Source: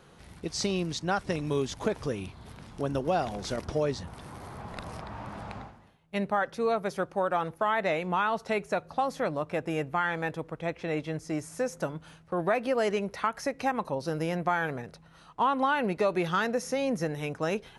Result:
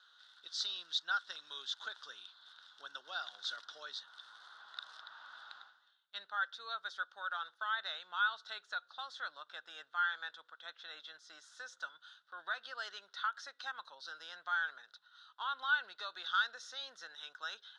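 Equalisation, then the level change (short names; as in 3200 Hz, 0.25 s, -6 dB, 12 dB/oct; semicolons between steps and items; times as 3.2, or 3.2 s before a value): double band-pass 2300 Hz, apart 1.3 oct; air absorption 120 m; differentiator; +15.5 dB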